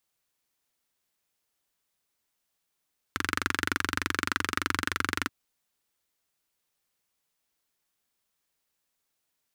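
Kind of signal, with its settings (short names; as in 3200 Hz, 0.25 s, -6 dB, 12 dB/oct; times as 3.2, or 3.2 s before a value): single-cylinder engine model, steady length 2.13 s, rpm 2800, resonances 90/280/1400 Hz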